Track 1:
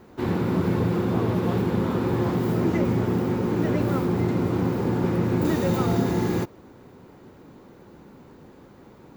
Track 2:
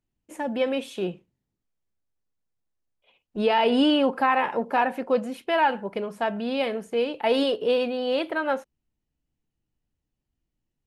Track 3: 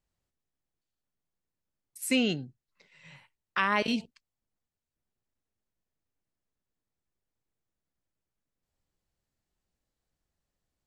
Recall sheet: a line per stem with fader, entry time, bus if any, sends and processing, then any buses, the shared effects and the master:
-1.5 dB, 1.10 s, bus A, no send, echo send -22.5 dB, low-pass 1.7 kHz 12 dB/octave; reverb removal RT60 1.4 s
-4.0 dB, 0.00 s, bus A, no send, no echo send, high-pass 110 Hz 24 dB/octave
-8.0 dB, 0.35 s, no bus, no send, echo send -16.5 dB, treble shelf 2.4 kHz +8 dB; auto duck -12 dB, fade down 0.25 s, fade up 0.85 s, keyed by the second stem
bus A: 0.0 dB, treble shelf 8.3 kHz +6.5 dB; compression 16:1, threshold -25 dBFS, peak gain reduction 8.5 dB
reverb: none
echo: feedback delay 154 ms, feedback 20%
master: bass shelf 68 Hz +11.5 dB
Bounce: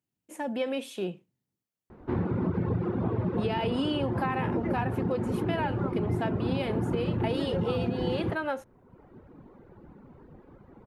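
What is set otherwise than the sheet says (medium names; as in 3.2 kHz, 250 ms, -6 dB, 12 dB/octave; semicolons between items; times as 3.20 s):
stem 1: entry 1.10 s -> 1.90 s; stem 3: muted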